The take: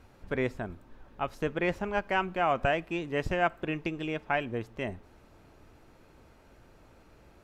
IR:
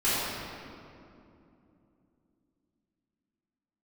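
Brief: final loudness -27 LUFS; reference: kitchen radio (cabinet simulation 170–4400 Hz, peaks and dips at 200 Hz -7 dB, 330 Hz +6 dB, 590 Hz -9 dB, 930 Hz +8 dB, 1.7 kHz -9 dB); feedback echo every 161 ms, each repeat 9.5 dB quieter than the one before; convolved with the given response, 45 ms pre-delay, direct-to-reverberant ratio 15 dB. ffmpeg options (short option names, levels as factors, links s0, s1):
-filter_complex "[0:a]aecho=1:1:161|322|483|644:0.335|0.111|0.0365|0.012,asplit=2[s0][s1];[1:a]atrim=start_sample=2205,adelay=45[s2];[s1][s2]afir=irnorm=-1:irlink=0,volume=0.0355[s3];[s0][s3]amix=inputs=2:normalize=0,highpass=170,equalizer=f=200:t=q:w=4:g=-7,equalizer=f=330:t=q:w=4:g=6,equalizer=f=590:t=q:w=4:g=-9,equalizer=f=930:t=q:w=4:g=8,equalizer=f=1700:t=q:w=4:g=-9,lowpass=f=4400:w=0.5412,lowpass=f=4400:w=1.3066,volume=1.58"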